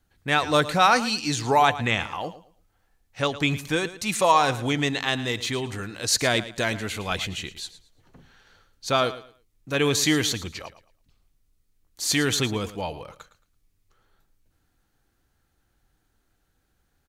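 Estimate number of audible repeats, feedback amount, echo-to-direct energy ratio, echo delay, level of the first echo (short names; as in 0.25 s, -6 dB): 2, 24%, -14.5 dB, 0.111 s, -15.0 dB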